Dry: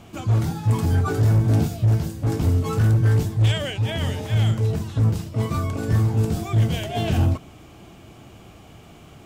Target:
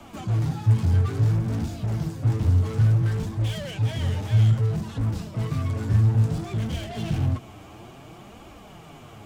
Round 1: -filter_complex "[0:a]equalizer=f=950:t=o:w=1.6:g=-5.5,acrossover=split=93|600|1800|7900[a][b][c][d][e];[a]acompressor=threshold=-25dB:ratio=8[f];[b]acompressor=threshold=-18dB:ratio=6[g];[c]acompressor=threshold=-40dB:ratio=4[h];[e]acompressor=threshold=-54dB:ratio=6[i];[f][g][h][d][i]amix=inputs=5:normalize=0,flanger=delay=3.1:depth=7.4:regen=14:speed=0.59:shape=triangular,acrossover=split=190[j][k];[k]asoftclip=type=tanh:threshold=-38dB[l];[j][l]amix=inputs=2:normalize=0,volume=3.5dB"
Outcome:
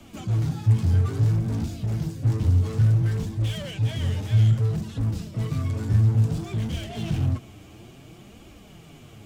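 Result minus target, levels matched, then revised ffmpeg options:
1000 Hz band -4.0 dB
-filter_complex "[0:a]equalizer=f=950:t=o:w=1.6:g=5,acrossover=split=93|600|1800|7900[a][b][c][d][e];[a]acompressor=threshold=-25dB:ratio=8[f];[b]acompressor=threshold=-18dB:ratio=6[g];[c]acompressor=threshold=-40dB:ratio=4[h];[e]acompressor=threshold=-54dB:ratio=6[i];[f][g][h][d][i]amix=inputs=5:normalize=0,flanger=delay=3.1:depth=7.4:regen=14:speed=0.59:shape=triangular,acrossover=split=190[j][k];[k]asoftclip=type=tanh:threshold=-38dB[l];[j][l]amix=inputs=2:normalize=0,volume=3.5dB"

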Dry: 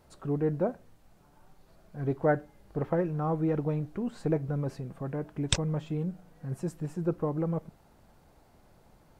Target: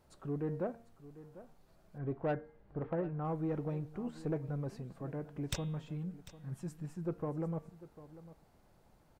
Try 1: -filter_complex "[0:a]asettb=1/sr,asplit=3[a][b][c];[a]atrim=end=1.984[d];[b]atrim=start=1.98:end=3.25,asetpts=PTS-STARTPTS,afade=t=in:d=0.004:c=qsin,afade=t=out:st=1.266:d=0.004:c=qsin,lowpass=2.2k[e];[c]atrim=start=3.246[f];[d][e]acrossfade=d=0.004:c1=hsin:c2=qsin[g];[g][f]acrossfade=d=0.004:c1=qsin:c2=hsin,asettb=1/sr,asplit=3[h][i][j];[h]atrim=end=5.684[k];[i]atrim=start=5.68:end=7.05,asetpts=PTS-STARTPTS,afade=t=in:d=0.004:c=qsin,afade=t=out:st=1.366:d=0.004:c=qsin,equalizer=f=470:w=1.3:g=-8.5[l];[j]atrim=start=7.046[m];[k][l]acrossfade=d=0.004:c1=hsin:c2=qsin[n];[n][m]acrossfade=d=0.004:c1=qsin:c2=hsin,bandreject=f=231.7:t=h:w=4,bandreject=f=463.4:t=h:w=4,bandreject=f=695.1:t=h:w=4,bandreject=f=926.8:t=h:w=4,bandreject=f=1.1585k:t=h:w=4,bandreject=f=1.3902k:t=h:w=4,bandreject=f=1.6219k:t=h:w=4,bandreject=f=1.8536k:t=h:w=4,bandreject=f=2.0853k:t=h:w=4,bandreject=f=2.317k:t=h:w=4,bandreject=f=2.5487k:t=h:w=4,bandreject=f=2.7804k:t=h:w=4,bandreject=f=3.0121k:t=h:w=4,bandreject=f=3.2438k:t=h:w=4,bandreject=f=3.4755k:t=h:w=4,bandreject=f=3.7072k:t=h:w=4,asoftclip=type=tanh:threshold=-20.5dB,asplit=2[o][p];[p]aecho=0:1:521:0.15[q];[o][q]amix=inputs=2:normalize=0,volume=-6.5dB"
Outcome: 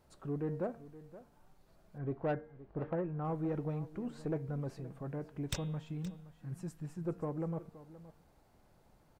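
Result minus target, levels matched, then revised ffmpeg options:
echo 0.226 s early
-filter_complex "[0:a]asettb=1/sr,asplit=3[a][b][c];[a]atrim=end=1.984[d];[b]atrim=start=1.98:end=3.25,asetpts=PTS-STARTPTS,afade=t=in:d=0.004:c=qsin,afade=t=out:st=1.266:d=0.004:c=qsin,lowpass=2.2k[e];[c]atrim=start=3.246[f];[d][e]acrossfade=d=0.004:c1=hsin:c2=qsin[g];[g][f]acrossfade=d=0.004:c1=qsin:c2=hsin,asettb=1/sr,asplit=3[h][i][j];[h]atrim=end=5.684[k];[i]atrim=start=5.68:end=7.05,asetpts=PTS-STARTPTS,afade=t=in:d=0.004:c=qsin,afade=t=out:st=1.366:d=0.004:c=qsin,equalizer=f=470:w=1.3:g=-8.5[l];[j]atrim=start=7.046[m];[k][l]acrossfade=d=0.004:c1=hsin:c2=qsin[n];[n][m]acrossfade=d=0.004:c1=qsin:c2=hsin,bandreject=f=231.7:t=h:w=4,bandreject=f=463.4:t=h:w=4,bandreject=f=695.1:t=h:w=4,bandreject=f=926.8:t=h:w=4,bandreject=f=1.1585k:t=h:w=4,bandreject=f=1.3902k:t=h:w=4,bandreject=f=1.6219k:t=h:w=4,bandreject=f=1.8536k:t=h:w=4,bandreject=f=2.0853k:t=h:w=4,bandreject=f=2.317k:t=h:w=4,bandreject=f=2.5487k:t=h:w=4,bandreject=f=2.7804k:t=h:w=4,bandreject=f=3.0121k:t=h:w=4,bandreject=f=3.2438k:t=h:w=4,bandreject=f=3.4755k:t=h:w=4,bandreject=f=3.7072k:t=h:w=4,asoftclip=type=tanh:threshold=-20.5dB,asplit=2[o][p];[p]aecho=0:1:747:0.15[q];[o][q]amix=inputs=2:normalize=0,volume=-6.5dB"

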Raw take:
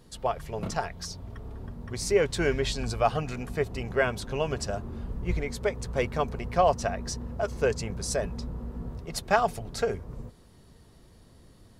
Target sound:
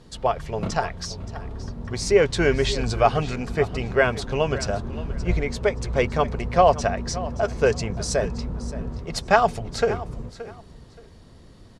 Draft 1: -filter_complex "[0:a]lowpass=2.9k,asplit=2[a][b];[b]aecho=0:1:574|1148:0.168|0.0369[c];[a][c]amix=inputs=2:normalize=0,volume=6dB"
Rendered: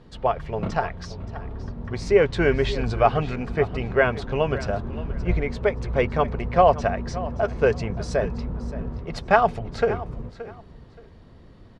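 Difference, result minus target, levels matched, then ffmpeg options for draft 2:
8000 Hz band -12.5 dB
-filter_complex "[0:a]lowpass=7.1k,asplit=2[a][b];[b]aecho=0:1:574|1148:0.168|0.0369[c];[a][c]amix=inputs=2:normalize=0,volume=6dB"

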